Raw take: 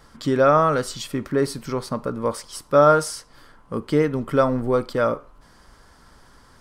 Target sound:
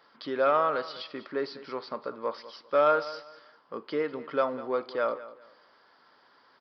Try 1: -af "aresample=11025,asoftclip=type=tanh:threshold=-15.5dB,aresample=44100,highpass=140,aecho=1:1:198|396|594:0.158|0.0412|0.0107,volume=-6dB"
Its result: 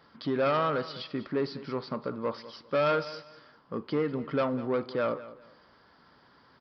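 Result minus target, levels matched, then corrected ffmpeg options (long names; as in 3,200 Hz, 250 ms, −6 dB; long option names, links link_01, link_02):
125 Hz band +15.0 dB; soft clipping: distortion +12 dB
-af "aresample=11025,asoftclip=type=tanh:threshold=-6dB,aresample=44100,highpass=420,aecho=1:1:198|396|594:0.158|0.0412|0.0107,volume=-6dB"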